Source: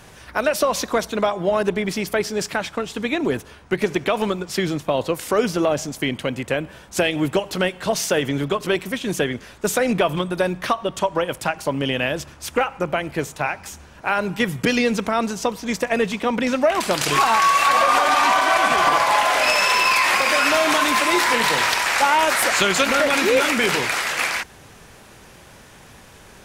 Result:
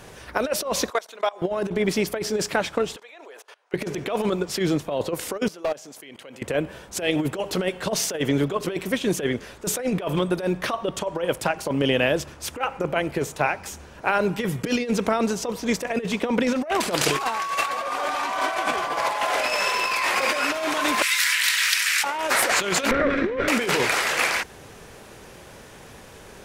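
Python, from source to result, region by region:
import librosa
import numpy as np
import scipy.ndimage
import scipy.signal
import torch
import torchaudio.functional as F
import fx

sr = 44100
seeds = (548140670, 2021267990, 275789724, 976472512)

y = fx.chain(x, sr, fx.highpass(hz=720.0, slope=12),
    fx.level_steps(step_db=22), at=(0.9, 1.42))
y = fx.chain(y, sr, fx.highpass(hz=570.0, slope=24),
    fx.high_shelf(hz=9800.0, db=-6.5),
    fx.level_steps(step_db=23), at=(2.96, 3.74))
y = fx.chain(y, sr, fx.highpass(hz=620.0, slope=6),
    fx.level_steps(step_db=22),
    fx.overload_stage(gain_db=22.5), at=(5.48, 6.42))
y = fx.chain(y, sr, fx.cheby2_highpass(hz=630.0, order=4, stop_db=50),
    fx.high_shelf(hz=8700.0, db=6.5), at=(21.02, 22.04))
y = fx.chain(y, sr, fx.lower_of_two(delay_ms=0.52),
    fx.lowpass(hz=1500.0, slope=12),
    fx.peak_eq(hz=840.0, db=-14.0, octaves=0.29), at=(22.91, 23.48))
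y = fx.peak_eq(y, sr, hz=450.0, db=5.5, octaves=1.0)
y = fx.over_compress(y, sr, threshold_db=-19.0, ratio=-0.5)
y = y * librosa.db_to_amplitude(-3.0)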